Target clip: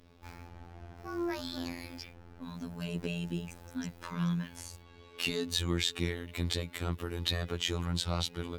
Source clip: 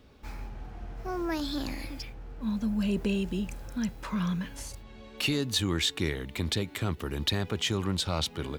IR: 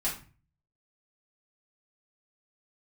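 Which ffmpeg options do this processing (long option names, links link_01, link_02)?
-af "afftfilt=real='hypot(re,im)*cos(PI*b)':imag='0':win_size=2048:overlap=0.75" -ar 44100 -c:a libmp3lame -b:a 160k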